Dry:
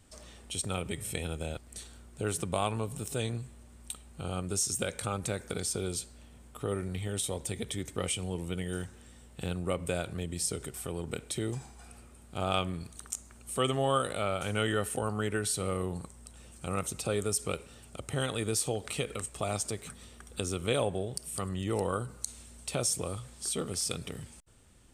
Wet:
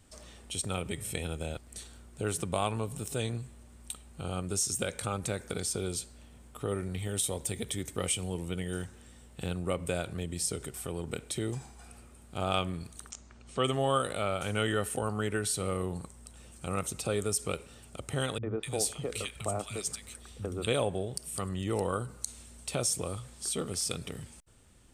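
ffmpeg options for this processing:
ffmpeg -i in.wav -filter_complex "[0:a]asettb=1/sr,asplit=3[link_01][link_02][link_03];[link_01]atrim=end=6.994[link_04];[link_02]atrim=start=6.99:end=8.39,asetpts=PTS-STARTPTS,afade=type=in:duration=0.004:curve=qsin,afade=type=out:start_time=1.396:duration=0.004:curve=qsin,highshelf=frequency=10000:gain=8[link_05];[link_03]atrim=start=8.386[link_06];[link_04][link_05]acrossfade=duration=0.004:curve1=hsin:curve2=qsin[link_07];[link_07][link_06]acrossfade=duration=0.004:curve1=qsin:curve2=hsin,asplit=3[link_08][link_09][link_10];[link_08]afade=type=out:start_time=13.09:duration=0.02[link_11];[link_09]lowpass=frequency=6000:width=0.5412,lowpass=frequency=6000:width=1.3066,afade=type=in:start_time=13.09:duration=0.02,afade=type=out:start_time=13.62:duration=0.02[link_12];[link_10]afade=type=in:start_time=13.62:duration=0.02[link_13];[link_11][link_12][link_13]amix=inputs=3:normalize=0,asettb=1/sr,asplit=3[link_14][link_15][link_16];[link_14]atrim=end=18.384[link_17];[link_15]atrim=start=18.38:end=20.67,asetpts=PTS-STARTPTS,afade=type=in:duration=0.004:curve=qsin,afade=type=out:start_time=2.286:duration=0.004:curve=qsin,acrossover=split=180|1600[link_18][link_19][link_20];[link_19]adelay=50[link_21];[link_20]adelay=250[link_22];[link_18][link_21][link_22]amix=inputs=3:normalize=0,atrim=end_sample=100989[link_23];[link_16]atrim=start=20.666[link_24];[link_17][link_23]acrossfade=duration=0.004:curve1=hsin:curve2=qsin[link_25];[link_25][link_24]acrossfade=duration=0.004:curve1=qsin:curve2=hsin" out.wav

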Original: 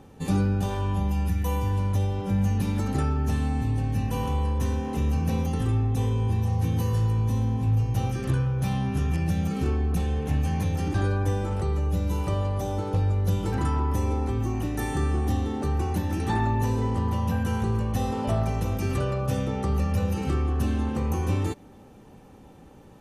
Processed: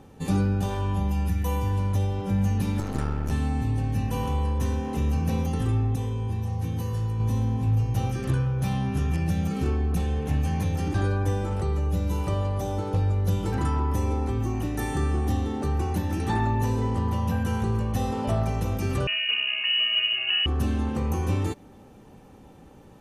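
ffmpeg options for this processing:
ffmpeg -i in.wav -filter_complex "[0:a]asettb=1/sr,asplit=3[link_01][link_02][link_03];[link_01]atrim=end=2.804[link_04];[link_02]atrim=start=2.8:end=3.31,asetpts=PTS-STARTPTS,afade=type=in:duration=0.004:curve=qsin,afade=type=out:start_time=0.506:duration=0.004:curve=qsin,aeval=exprs='clip(val(0),-1,0.0133)':channel_layout=same[link_05];[link_03]atrim=start=3.306[link_06];[link_04][link_05]acrossfade=duration=0.004:curve1=hsin:curve2=qsin[link_07];[link_07][link_06]acrossfade=duration=0.004:curve1=qsin:curve2=hsin,asettb=1/sr,asplit=3[link_08][link_09][link_10];[link_08]atrim=end=19.074[link_11];[link_09]atrim=start=19.07:end=20.46,asetpts=PTS-STARTPTS,afade=type=in:duration=0.004:curve=qsin,afade=type=out:start_time=1.386:duration=0.004:curve=qsin,lowpass=frequency=2600:width_type=q:width=0.5098,lowpass=frequency=2600:width_type=q:width=0.6013,lowpass=frequency=2600:width_type=q:width=0.9,lowpass=frequency=2600:width_type=q:width=2.563,afreqshift=-3000[link_12];[link_10]atrim=start=20.456[link_13];[link_11][link_12]acrossfade=duration=0.004:curve1=hsin:curve2=qsin[link_14];[link_14][link_13]acrossfade=duration=0.004:curve1=qsin:curve2=hsin,asplit=3[link_15][link_16][link_17];[link_15]atrim=end=5.962[link_18];[link_16]atrim=start=5.958:end=7.202,asetpts=PTS-STARTPTS,volume=-4dB[link_19];[link_17]atrim=start=7.198[link_20];[link_18][link_19]acrossfade=duration=0.004:curve1=hsin:curve2=hsin[link_21];[link_21][link_20]acrossfade=duration=0.004:curve1=hsin:curve2=hsin" out.wav

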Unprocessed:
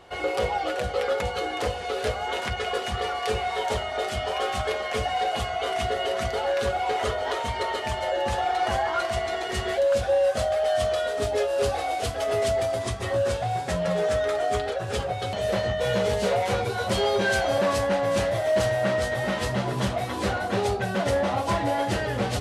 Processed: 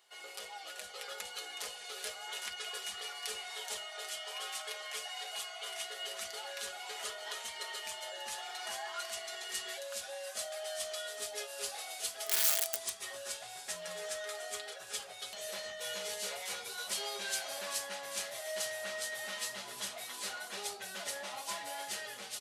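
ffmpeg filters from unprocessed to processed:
ffmpeg -i in.wav -filter_complex "[0:a]asettb=1/sr,asplit=3[link_01][link_02][link_03];[link_01]atrim=end=3.864[link_04];[link_02]atrim=start=3.86:end=6.05,asetpts=PTS-STARTPTS,afade=type=in:duration=0.004:curve=qsin,afade=type=out:start_time=2.186:duration=0.004:curve=qsin,bass=frequency=250:gain=-13,treble=frequency=4000:gain=-1[link_05];[link_03]atrim=start=6.046[link_06];[link_04][link_05]acrossfade=duration=0.004:curve1=hsin:curve2=qsin[link_07];[link_07][link_06]acrossfade=duration=0.004:curve1=qsin:curve2=hsin,asplit=3[link_08][link_09][link_10];[link_08]afade=type=out:start_time=12.26:duration=0.02[link_11];[link_09]aeval=exprs='(mod(8.41*val(0)+1,2)-1)/8.41':channel_layout=same,afade=type=in:start_time=12.26:duration=0.02,afade=type=out:start_time=13.04:duration=0.02[link_12];[link_10]afade=type=in:start_time=13.04:duration=0.02[link_13];[link_11][link_12][link_13]amix=inputs=3:normalize=0,dynaudnorm=framelen=580:gausssize=3:maxgain=4dB,aderivative,aecho=1:1:4.8:0.39,volume=-4.5dB" out.wav

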